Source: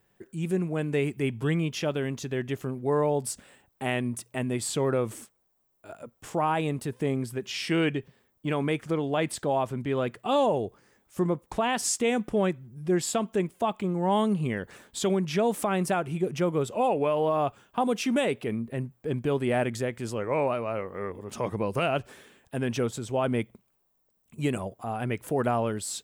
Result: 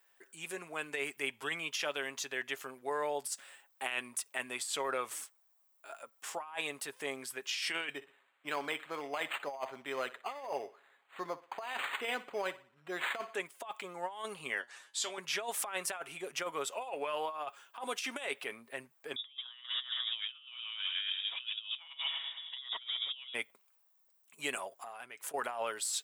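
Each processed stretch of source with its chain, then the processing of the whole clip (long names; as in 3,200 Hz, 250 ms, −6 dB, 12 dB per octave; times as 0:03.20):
0:07.89–0:13.35: feedback echo with a high-pass in the loop 61 ms, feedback 39%, high-pass 160 Hz, level −17 dB + linearly interpolated sample-rate reduction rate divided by 8×
0:14.61–0:15.18: low-pass filter 6,300 Hz + high-shelf EQ 4,600 Hz +11 dB + tuned comb filter 120 Hz, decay 0.16 s, mix 80%
0:19.16–0:23.34: echo with a time of its own for lows and highs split 340 Hz, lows 304 ms, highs 104 ms, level −12 dB + voice inversion scrambler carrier 3,600 Hz
0:24.74–0:25.34: parametric band 6,900 Hz +4 dB 0.9 octaves + downward compressor 12 to 1, threshold −37 dBFS
whole clip: high-pass filter 1,000 Hz 12 dB per octave; comb filter 7.3 ms, depth 35%; compressor whose output falls as the input rises −35 dBFS, ratio −0.5; level −2 dB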